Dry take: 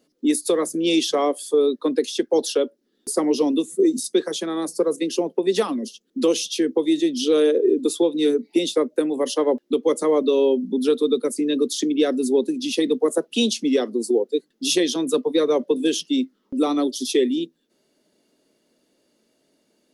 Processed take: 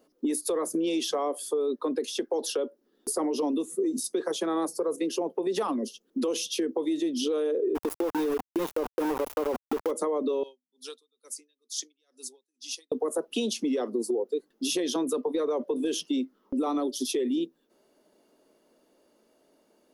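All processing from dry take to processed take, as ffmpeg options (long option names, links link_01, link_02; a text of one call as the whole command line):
ffmpeg -i in.wav -filter_complex "[0:a]asettb=1/sr,asplit=3[link_01][link_02][link_03];[link_01]atrim=end=7.754[link_04];[link_02]atrim=start=7.75:end=9.91,asetpts=PTS-STARTPTS,afade=type=in:duration=0.004:curve=qsin,afade=type=out:start_time=2.156:duration=0.004:curve=qsin,highpass=63,equalizer=frequency=3100:width_type=o:width=2.6:gain=-7.5,aeval=exprs='val(0)*gte(abs(val(0)),0.0562)':channel_layout=same[link_05];[link_03]atrim=start=9.906[link_06];[link_04][link_05]acrossfade=duration=0.004:curve1=hsin:curve2=qsin[link_07];[link_07][link_06]acrossfade=duration=0.004:curve1=qsin:curve2=hsin,asettb=1/sr,asplit=3[link_08][link_09][link_10];[link_08]atrim=end=10.434[link_11];[link_09]atrim=start=10.43:end=12.92,asetpts=PTS-STARTPTS,afade=type=in:duration=0.004:curve=qsin,afade=type=out:start_time=2.486:duration=0.004:curve=qsin,bandpass=frequency=5700:width_type=q:width=1.5,highshelf=frequency=5200:gain=5.5,aeval=exprs='val(0)*pow(10,-36*(0.5-0.5*cos(2*PI*2.2*n/s))/20)':channel_layout=same[link_12];[link_10]atrim=start=12.916[link_13];[link_11][link_12]acrossfade=duration=0.004:curve1=hsin:curve2=qsin[link_14];[link_14][link_13]acrossfade=duration=0.004:curve1=qsin:curve2=hsin,equalizer=frequency=125:width_type=o:width=1:gain=-11,equalizer=frequency=250:width_type=o:width=1:gain=-3,equalizer=frequency=1000:width_type=o:width=1:gain=4,equalizer=frequency=2000:width_type=o:width=1:gain=-5,equalizer=frequency=4000:width_type=o:width=1:gain=-7,equalizer=frequency=8000:width_type=o:width=1:gain=-7,alimiter=limit=-20dB:level=0:latency=1:release=36,acompressor=threshold=-29dB:ratio=3,volume=3.5dB" out.wav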